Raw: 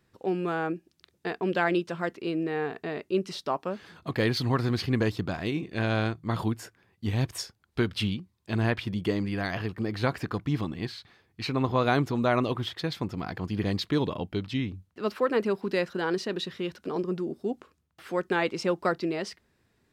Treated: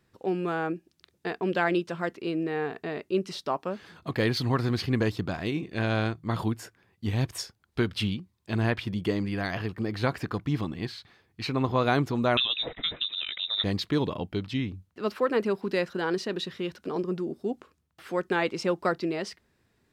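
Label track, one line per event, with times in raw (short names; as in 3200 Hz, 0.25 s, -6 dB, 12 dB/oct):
12.370000	13.640000	inverted band carrier 3800 Hz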